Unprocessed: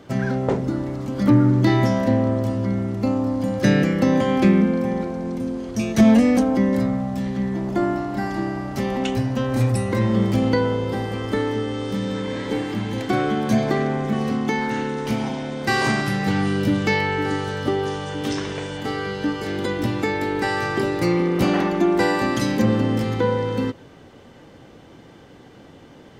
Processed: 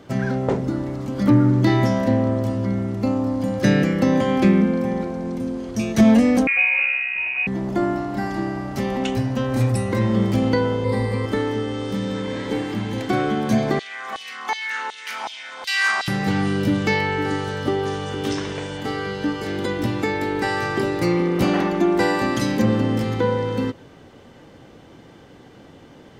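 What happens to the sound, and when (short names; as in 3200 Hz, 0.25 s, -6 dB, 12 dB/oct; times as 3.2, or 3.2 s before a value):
6.47–7.47 inverted band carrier 2700 Hz
10.84–11.26 ripple EQ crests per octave 0.95, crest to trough 12 dB
13.79–16.08 LFO high-pass saw down 2.7 Hz 840–3800 Hz
17.39–17.88 echo throw 0.46 s, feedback 15%, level -10.5 dB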